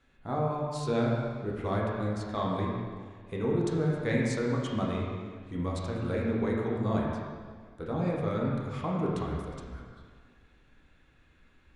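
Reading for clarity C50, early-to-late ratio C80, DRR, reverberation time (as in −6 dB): 0.0 dB, 2.0 dB, −4.0 dB, 1.7 s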